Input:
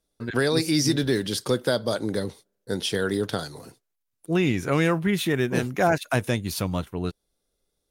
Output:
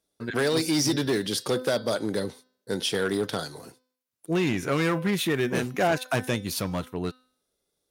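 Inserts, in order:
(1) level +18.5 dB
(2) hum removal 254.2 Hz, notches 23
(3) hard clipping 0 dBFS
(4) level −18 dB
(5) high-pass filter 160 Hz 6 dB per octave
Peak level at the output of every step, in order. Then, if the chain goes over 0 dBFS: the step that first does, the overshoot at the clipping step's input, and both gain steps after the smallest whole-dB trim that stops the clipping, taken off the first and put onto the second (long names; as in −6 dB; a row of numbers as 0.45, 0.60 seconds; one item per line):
+8.0, +8.5, 0.0, −18.0, −13.5 dBFS
step 1, 8.5 dB
step 1 +9.5 dB, step 4 −9 dB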